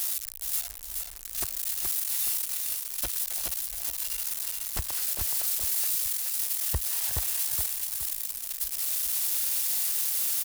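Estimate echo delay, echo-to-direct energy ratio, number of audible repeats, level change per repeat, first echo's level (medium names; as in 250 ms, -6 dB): 422 ms, -3.5 dB, 3, -8.0 dB, -4.0 dB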